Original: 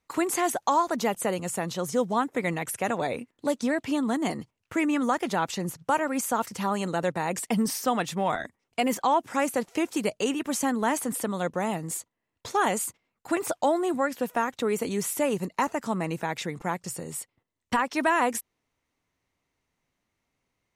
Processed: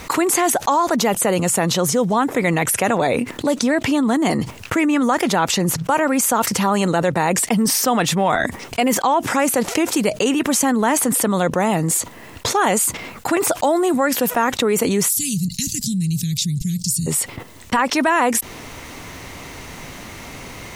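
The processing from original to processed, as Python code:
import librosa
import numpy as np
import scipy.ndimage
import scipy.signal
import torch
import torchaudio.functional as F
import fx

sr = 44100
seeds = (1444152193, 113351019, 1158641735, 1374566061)

y = fx.high_shelf(x, sr, hz=6500.0, db=6.5, at=(13.51, 14.31))
y = fx.ellip_bandstop(y, sr, low_hz=160.0, high_hz=4200.0, order=3, stop_db=70, at=(15.08, 17.06), fade=0.02)
y = fx.env_flatten(y, sr, amount_pct=70)
y = y * 10.0 ** (4.5 / 20.0)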